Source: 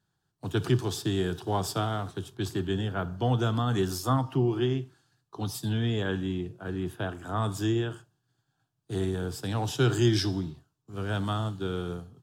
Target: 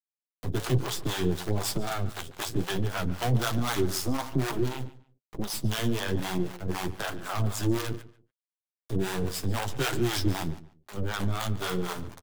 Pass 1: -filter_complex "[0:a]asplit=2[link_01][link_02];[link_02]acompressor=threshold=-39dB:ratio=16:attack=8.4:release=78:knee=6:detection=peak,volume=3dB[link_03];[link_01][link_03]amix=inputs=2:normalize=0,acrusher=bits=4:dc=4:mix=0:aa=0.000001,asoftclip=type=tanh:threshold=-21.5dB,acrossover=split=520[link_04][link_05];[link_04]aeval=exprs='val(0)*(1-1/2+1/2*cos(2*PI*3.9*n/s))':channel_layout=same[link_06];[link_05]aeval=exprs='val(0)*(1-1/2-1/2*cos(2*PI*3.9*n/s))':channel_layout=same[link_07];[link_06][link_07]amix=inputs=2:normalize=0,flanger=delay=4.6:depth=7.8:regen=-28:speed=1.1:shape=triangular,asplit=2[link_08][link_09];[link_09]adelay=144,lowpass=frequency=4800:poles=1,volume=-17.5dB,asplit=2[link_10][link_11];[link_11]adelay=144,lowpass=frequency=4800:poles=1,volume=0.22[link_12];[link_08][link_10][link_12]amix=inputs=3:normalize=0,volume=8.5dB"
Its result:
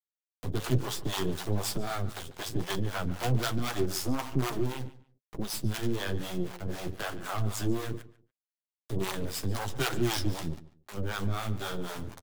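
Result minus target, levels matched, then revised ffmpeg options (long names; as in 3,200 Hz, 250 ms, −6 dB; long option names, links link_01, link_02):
downward compressor: peak gain reduction +10 dB
-filter_complex "[0:a]asplit=2[link_01][link_02];[link_02]acompressor=threshold=-28.5dB:ratio=16:attack=8.4:release=78:knee=6:detection=peak,volume=3dB[link_03];[link_01][link_03]amix=inputs=2:normalize=0,acrusher=bits=4:dc=4:mix=0:aa=0.000001,asoftclip=type=tanh:threshold=-21.5dB,acrossover=split=520[link_04][link_05];[link_04]aeval=exprs='val(0)*(1-1/2+1/2*cos(2*PI*3.9*n/s))':channel_layout=same[link_06];[link_05]aeval=exprs='val(0)*(1-1/2-1/2*cos(2*PI*3.9*n/s))':channel_layout=same[link_07];[link_06][link_07]amix=inputs=2:normalize=0,flanger=delay=4.6:depth=7.8:regen=-28:speed=1.1:shape=triangular,asplit=2[link_08][link_09];[link_09]adelay=144,lowpass=frequency=4800:poles=1,volume=-17.5dB,asplit=2[link_10][link_11];[link_11]adelay=144,lowpass=frequency=4800:poles=1,volume=0.22[link_12];[link_08][link_10][link_12]amix=inputs=3:normalize=0,volume=8.5dB"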